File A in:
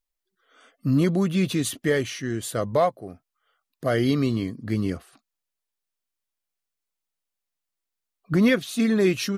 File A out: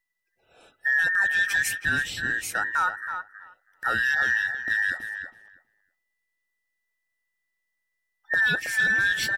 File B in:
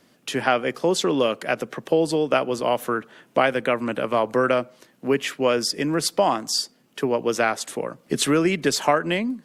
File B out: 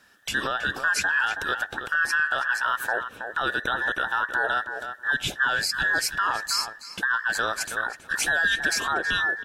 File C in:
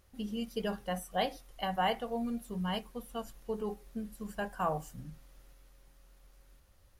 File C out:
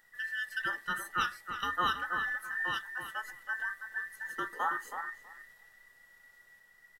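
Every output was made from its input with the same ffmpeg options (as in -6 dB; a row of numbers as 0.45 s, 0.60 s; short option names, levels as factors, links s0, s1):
-filter_complex "[0:a]afftfilt=real='real(if(between(b,1,1012),(2*floor((b-1)/92)+1)*92-b,b),0)':imag='imag(if(between(b,1,1012),(2*floor((b-1)/92)+1)*92-b,b),0)*if(between(b,1,1012),-1,1)':win_size=2048:overlap=0.75,alimiter=limit=0.168:level=0:latency=1:release=47,asplit=2[s0][s1];[s1]adelay=323,lowpass=f=2100:p=1,volume=0.447,asplit=2[s2][s3];[s3]adelay=323,lowpass=f=2100:p=1,volume=0.15,asplit=2[s4][s5];[s5]adelay=323,lowpass=f=2100:p=1,volume=0.15[s6];[s0][s2][s4][s6]amix=inputs=4:normalize=0"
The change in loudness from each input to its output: 0.0 LU, -2.0 LU, +2.0 LU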